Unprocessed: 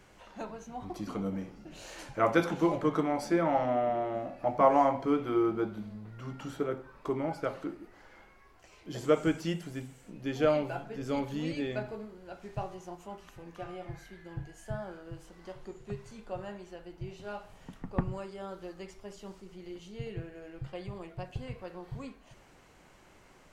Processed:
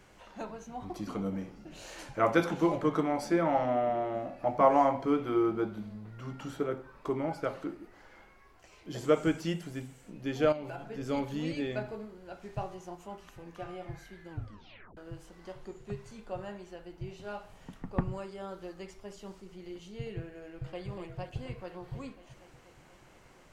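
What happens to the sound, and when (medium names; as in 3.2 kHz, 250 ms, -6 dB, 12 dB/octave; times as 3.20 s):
10.52–10.92 s: compression 5:1, threshold -36 dBFS
14.30 s: tape stop 0.67 s
20.37–20.81 s: echo throw 240 ms, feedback 80%, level -8 dB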